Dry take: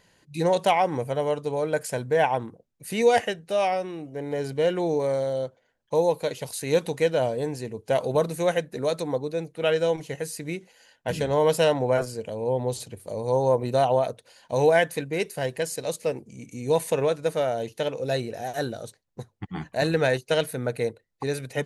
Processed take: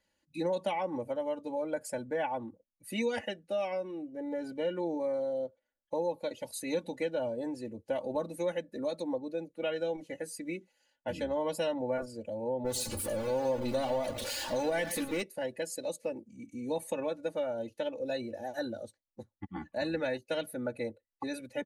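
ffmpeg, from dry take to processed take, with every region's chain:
-filter_complex "[0:a]asettb=1/sr,asplit=3[s0][s1][s2];[s0]atrim=end=12.644[s3];[s1]atrim=start=12.64:end=15.22,asetpts=PTS-STARTPTS,afade=t=in:d=0.004:c=qsin,afade=t=out:st=2.576:d=0.004:c=qsin,aeval=exprs='val(0)+0.5*0.0473*sgn(val(0))':c=same,aecho=1:1:112:0.211,atrim=end_sample=113778,adynamicequalizer=threshold=0.0178:dfrequency=2600:dqfactor=0.7:tfrequency=2600:tqfactor=0.7:attack=5:release=100:ratio=0.375:range=2:mode=boostabove:tftype=highshelf[s4];[s2]atrim=start=15.216[s5];[s3][s4]acrossfade=d=0.004:c1=hsin:c2=qsin[s6];[s6][s5]acrossfade=d=0.004:c1=qsin:c2=hsin,afftdn=nr=12:nf=-39,aecho=1:1:3.5:0.96,acrossover=split=230[s7][s8];[s8]acompressor=threshold=0.0562:ratio=2.5[s9];[s7][s9]amix=inputs=2:normalize=0,volume=0.422"

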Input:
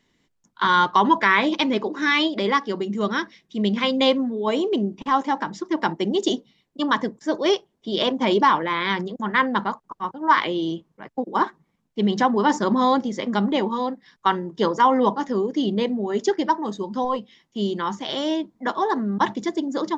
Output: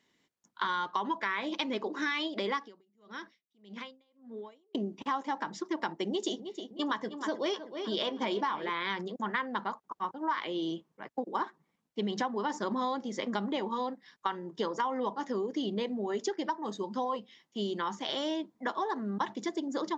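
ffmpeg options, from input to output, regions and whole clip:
-filter_complex "[0:a]asettb=1/sr,asplit=3[s0][s1][s2];[s0]atrim=end=2.614[s3];[s1]atrim=start=2.61:end=4.75,asetpts=PTS-STARTPTS,afade=t=in:d=0.004:c=qsin,afade=t=out:st=2.136:d=0.004:c=qsin,acompressor=threshold=0.0316:ratio=16:attack=3.2:release=140:knee=1:detection=peak,aeval=exprs='val(0)*pow(10,-33*(0.5-0.5*cos(2*PI*1.7*n/s))/20)':c=same[s4];[s2]atrim=start=4.746[s5];[s3][s4]acrossfade=d=0.004:c1=hsin:c2=qsin[s6];[s6][s5]acrossfade=d=0.004:c1=qsin:c2=hsin,asettb=1/sr,asplit=3[s7][s8][s9];[s7]atrim=end=6.084[s10];[s8]atrim=start=6.08:end=8.7,asetpts=PTS-STARTPTS,afade=t=in:d=0.004:c=qsin,afade=t=out:st=2.616:d=0.004:c=qsin,asplit=2[s11][s12];[s12]adelay=14,volume=0.251[s13];[s11][s13]amix=inputs=2:normalize=0,atrim=end_sample=115542,asplit=2[s14][s15];[s15]adelay=313,lowpass=f=3500:p=1,volume=0.224,asplit=2[s16][s17];[s17]adelay=313,lowpass=f=3500:p=1,volume=0.51,asplit=2[s18][s19];[s19]adelay=313,lowpass=f=3500:p=1,volume=0.51,asplit=2[s20][s21];[s21]adelay=313,lowpass=f=3500:p=1,volume=0.51,asplit=2[s22][s23];[s23]adelay=313,lowpass=f=3500:p=1,volume=0.51[s24];[s14][s16][s18][s20][s22][s24]amix=inputs=6:normalize=0,atrim=end_sample=115542[s25];[s9]atrim=start=8.696[s26];[s10][s25]acrossfade=d=0.004:c1=hsin:c2=qsin[s27];[s27][s26]acrossfade=d=0.004:c1=qsin:c2=hsin,highpass=f=290:p=1,acompressor=threshold=0.0562:ratio=6,volume=0.631"

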